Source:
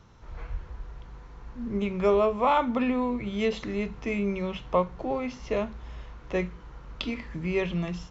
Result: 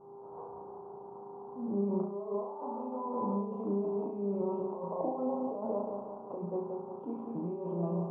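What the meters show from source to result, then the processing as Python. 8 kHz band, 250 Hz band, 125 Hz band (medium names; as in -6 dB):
no reading, -5.5 dB, -5.5 dB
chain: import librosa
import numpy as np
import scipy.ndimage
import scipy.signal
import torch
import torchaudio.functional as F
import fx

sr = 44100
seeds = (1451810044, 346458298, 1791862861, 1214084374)

y = fx.tilt_eq(x, sr, slope=3.5)
y = fx.echo_feedback(y, sr, ms=180, feedback_pct=51, wet_db=-9)
y = fx.over_compress(y, sr, threshold_db=-36.0, ratio=-1.0)
y = scipy.signal.sosfilt(scipy.signal.butter(4, 150.0, 'highpass', fs=sr, output='sos'), y)
y = fx.dmg_buzz(y, sr, base_hz=400.0, harmonics=27, level_db=-57.0, tilt_db=-8, odd_only=False)
y = scipy.signal.sosfilt(scipy.signal.ellip(4, 1.0, 50, 960.0, 'lowpass', fs=sr, output='sos'), y)
y = fx.room_flutter(y, sr, wall_m=6.0, rt60_s=0.52)
y = fx.attack_slew(y, sr, db_per_s=220.0)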